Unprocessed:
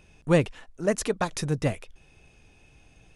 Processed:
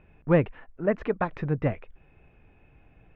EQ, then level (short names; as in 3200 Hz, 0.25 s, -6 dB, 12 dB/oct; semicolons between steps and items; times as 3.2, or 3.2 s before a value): LPF 2200 Hz 24 dB/oct; 0.0 dB